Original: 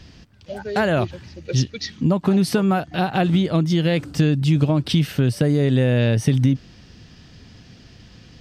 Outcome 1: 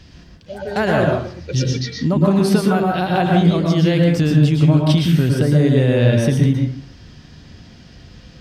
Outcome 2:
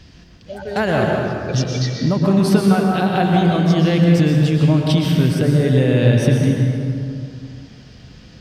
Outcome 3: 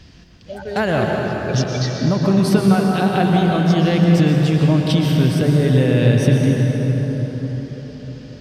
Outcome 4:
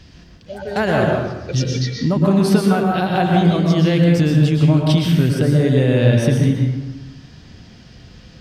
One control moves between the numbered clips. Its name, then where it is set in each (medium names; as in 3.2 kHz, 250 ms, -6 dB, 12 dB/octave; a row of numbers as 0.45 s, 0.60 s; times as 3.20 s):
plate-style reverb, RT60: 0.5 s, 2.5 s, 5.3 s, 1.1 s